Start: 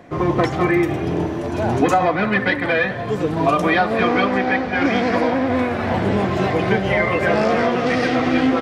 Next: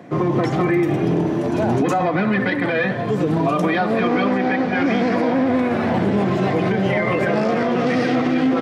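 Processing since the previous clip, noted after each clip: HPF 130 Hz 24 dB/oct; low shelf 350 Hz +8 dB; limiter -10.5 dBFS, peak gain reduction 9.5 dB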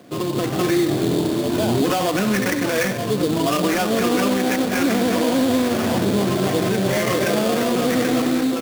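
thirty-one-band EQ 160 Hz -7 dB, 800 Hz -5 dB, 2000 Hz -3 dB; AGC gain up to 4.5 dB; sample-rate reducer 4000 Hz, jitter 20%; gain -4 dB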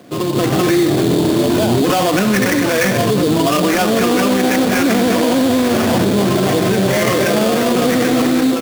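AGC; maximiser +10.5 dB; gain -6.5 dB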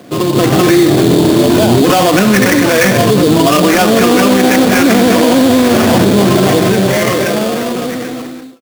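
ending faded out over 2.17 s; gain +5.5 dB

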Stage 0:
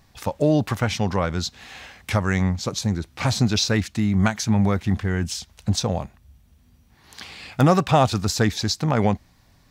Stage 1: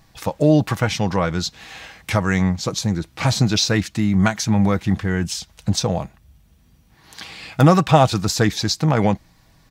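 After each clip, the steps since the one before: comb 6.2 ms, depth 35%; gain +2.5 dB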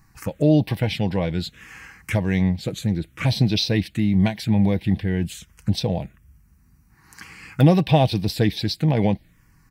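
envelope phaser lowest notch 580 Hz, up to 1300 Hz, full sweep at -16 dBFS; gain -1 dB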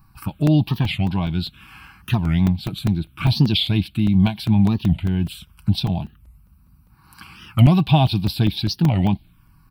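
fixed phaser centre 1900 Hz, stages 6; crackling interface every 0.20 s, samples 128, zero, from 0.47; record warp 45 rpm, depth 250 cents; gain +4 dB

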